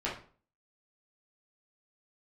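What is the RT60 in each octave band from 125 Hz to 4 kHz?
0.50, 0.45, 0.45, 0.40, 0.35, 0.30 seconds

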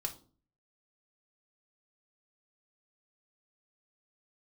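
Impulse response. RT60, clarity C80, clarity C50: 0.40 s, 19.5 dB, 14.0 dB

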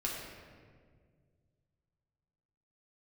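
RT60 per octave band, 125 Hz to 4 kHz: 3.0, 2.4, 2.1, 1.6, 1.4, 1.1 seconds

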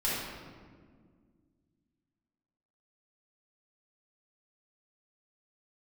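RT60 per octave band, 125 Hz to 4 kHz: 2.7, 2.8, 2.1, 1.5, 1.3, 1.0 seconds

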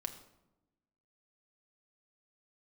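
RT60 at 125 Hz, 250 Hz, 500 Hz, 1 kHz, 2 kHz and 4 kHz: 1.3, 1.4, 1.0, 0.85, 0.65, 0.55 seconds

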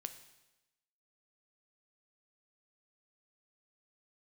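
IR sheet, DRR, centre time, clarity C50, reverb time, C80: 8.5 dB, 10 ms, 11.5 dB, 1.0 s, 13.5 dB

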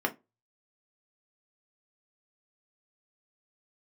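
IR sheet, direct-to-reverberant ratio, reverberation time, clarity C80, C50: 2.5 dB, non-exponential decay, 29.0 dB, 19.5 dB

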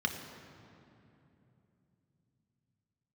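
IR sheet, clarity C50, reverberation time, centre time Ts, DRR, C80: 7.0 dB, 3.0 s, 41 ms, 3.5 dB, 8.0 dB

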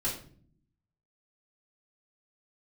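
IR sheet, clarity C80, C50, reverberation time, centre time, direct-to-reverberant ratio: 11.0 dB, 6.0 dB, 0.50 s, 30 ms, −8.0 dB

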